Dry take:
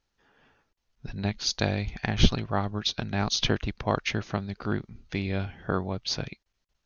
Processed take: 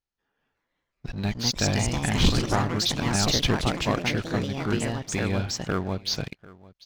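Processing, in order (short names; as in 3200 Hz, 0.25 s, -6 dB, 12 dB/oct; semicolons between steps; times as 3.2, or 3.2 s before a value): sample leveller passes 3; echo 0.744 s -21 dB; echoes that change speed 0.397 s, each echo +3 st, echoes 3; gain -8.5 dB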